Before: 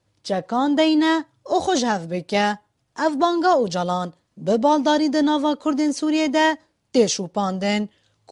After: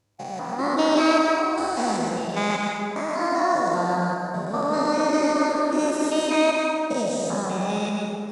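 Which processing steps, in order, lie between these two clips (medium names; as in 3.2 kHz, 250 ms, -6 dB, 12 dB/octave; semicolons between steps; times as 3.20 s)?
spectrogram pixelated in time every 200 ms; formant shift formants +4 st; plate-style reverb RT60 2.4 s, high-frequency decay 0.55×, pre-delay 105 ms, DRR -1 dB; trim -3.5 dB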